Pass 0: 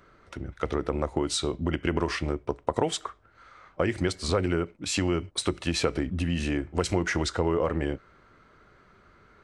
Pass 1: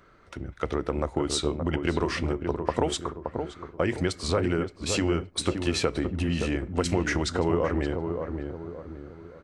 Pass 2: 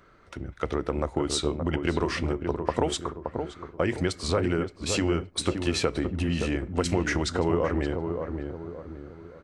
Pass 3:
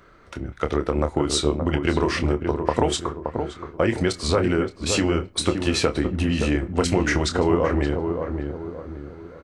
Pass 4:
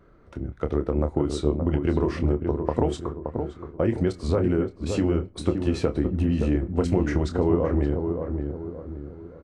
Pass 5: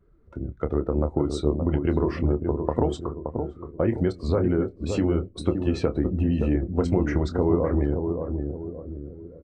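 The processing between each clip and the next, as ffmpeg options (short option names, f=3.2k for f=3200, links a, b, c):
-filter_complex "[0:a]asplit=2[a][b];[b]adelay=572,lowpass=f=940:p=1,volume=-5dB,asplit=2[c][d];[d]adelay=572,lowpass=f=940:p=1,volume=0.45,asplit=2[e][f];[f]adelay=572,lowpass=f=940:p=1,volume=0.45,asplit=2[g][h];[h]adelay=572,lowpass=f=940:p=1,volume=0.45,asplit=2[i][j];[j]adelay=572,lowpass=f=940:p=1,volume=0.45,asplit=2[k][l];[l]adelay=572,lowpass=f=940:p=1,volume=0.45[m];[a][c][e][g][i][k][m]amix=inputs=7:normalize=0"
-af anull
-filter_complex "[0:a]asplit=2[a][b];[b]adelay=27,volume=-9dB[c];[a][c]amix=inputs=2:normalize=0,volume=4.5dB"
-af "tiltshelf=f=970:g=8,volume=-7.5dB"
-af "afftdn=nr=15:nf=-45"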